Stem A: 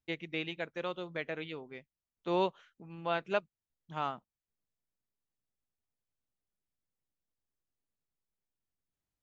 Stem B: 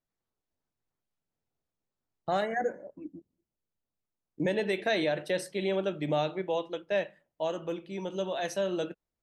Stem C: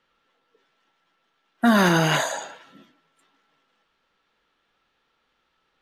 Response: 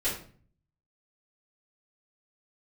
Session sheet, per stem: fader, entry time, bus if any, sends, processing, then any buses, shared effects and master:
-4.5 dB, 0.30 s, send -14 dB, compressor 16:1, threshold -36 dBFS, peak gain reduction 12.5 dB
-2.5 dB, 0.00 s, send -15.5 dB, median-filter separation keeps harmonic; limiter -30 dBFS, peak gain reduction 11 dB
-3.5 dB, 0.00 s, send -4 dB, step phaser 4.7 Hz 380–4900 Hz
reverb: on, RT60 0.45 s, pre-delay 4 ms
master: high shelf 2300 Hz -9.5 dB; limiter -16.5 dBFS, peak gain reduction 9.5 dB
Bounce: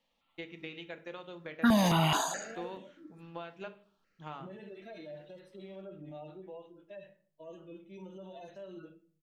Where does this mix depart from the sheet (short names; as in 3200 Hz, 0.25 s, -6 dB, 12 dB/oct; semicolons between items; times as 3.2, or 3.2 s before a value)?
stem B -2.5 dB -> -11.5 dB; stem C: send off; master: missing high shelf 2300 Hz -9.5 dB